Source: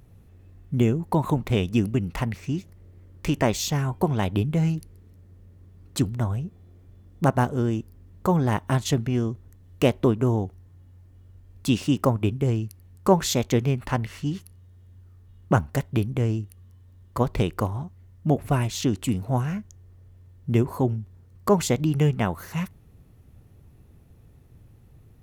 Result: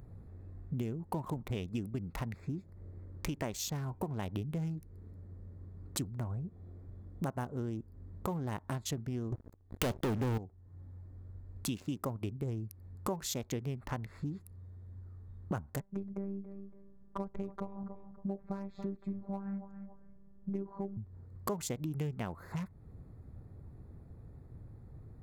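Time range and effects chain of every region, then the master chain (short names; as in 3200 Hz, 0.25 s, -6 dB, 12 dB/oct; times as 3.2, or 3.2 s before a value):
9.32–10.38 envelope flanger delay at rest 2.9 ms, full sweep at -18 dBFS + sample leveller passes 5
15.8–20.97 robotiser 197 Hz + tape spacing loss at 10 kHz 33 dB + feedback echo 0.281 s, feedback 23%, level -17 dB
whole clip: Wiener smoothing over 15 samples; high shelf 6200 Hz +8 dB; compressor 4:1, threshold -38 dBFS; gain +1 dB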